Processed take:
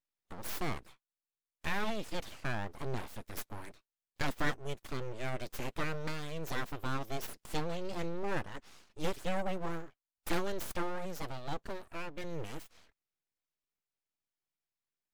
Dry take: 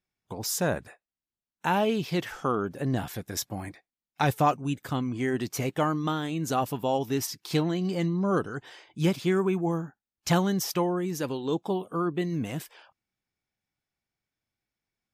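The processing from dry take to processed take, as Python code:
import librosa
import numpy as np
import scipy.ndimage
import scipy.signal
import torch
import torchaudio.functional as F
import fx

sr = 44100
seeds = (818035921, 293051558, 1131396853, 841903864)

y = fx.peak_eq(x, sr, hz=340.0, db=-10.5, octaves=0.71, at=(11.69, 12.24))
y = np.abs(y)
y = y * 10.0 ** (-6.5 / 20.0)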